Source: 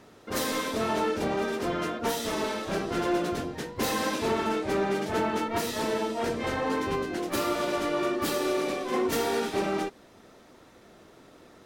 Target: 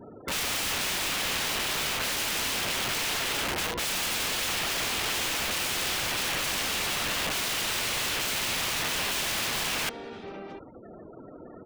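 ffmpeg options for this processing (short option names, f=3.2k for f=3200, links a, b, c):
-af "alimiter=limit=-23.5dB:level=0:latency=1:release=43,afftfilt=real='re*gte(hypot(re,im),0.00398)':imag='im*gte(hypot(re,im),0.00398)':win_size=1024:overlap=0.75,acontrast=56,lowpass=4.1k,aecho=1:1:699:0.119,aeval=exprs='(mod(26.6*val(0)+1,2)-1)/26.6':c=same,adynamicequalizer=threshold=0.00251:dfrequency=2800:dqfactor=1.5:tfrequency=2800:tqfactor=1.5:attack=5:release=100:ratio=0.375:range=2:mode=boostabove:tftype=bell,volume=2.5dB"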